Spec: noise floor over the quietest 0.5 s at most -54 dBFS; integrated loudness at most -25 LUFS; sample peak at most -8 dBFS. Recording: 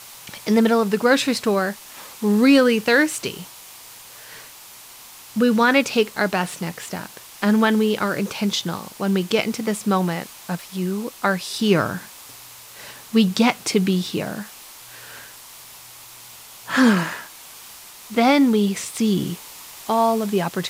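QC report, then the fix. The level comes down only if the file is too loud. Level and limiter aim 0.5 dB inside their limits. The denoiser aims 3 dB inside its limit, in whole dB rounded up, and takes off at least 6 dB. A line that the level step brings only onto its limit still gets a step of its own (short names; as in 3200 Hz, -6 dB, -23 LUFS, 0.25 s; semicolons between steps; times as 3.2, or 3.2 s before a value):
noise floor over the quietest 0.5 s -43 dBFS: fail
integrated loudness -20.5 LUFS: fail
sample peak -5.0 dBFS: fail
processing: denoiser 9 dB, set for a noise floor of -43 dBFS; gain -5 dB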